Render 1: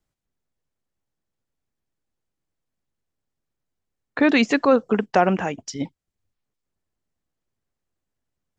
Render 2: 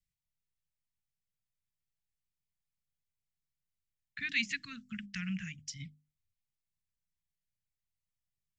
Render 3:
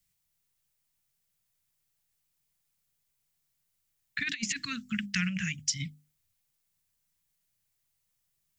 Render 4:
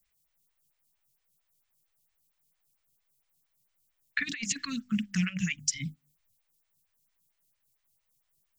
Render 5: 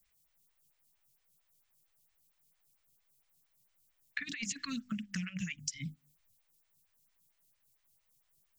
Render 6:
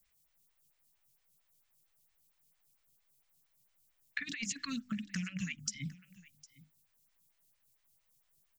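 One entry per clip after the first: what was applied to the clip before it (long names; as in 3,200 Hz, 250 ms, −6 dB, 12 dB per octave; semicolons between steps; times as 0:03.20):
elliptic band-stop filter 170–2,000 Hz, stop band 50 dB; mains-hum notches 50/100/150/200/250/300 Hz; level −8 dB
low-shelf EQ 67 Hz −8 dB; compressor whose output falls as the input rises −38 dBFS, ratio −0.5; high-shelf EQ 6,500 Hz +8.5 dB; level +7.5 dB
phaser with staggered stages 4.4 Hz; level +5.5 dB
downward compressor 12 to 1, threshold −36 dBFS, peak gain reduction 14 dB; level +1.5 dB
single-tap delay 757 ms −20.5 dB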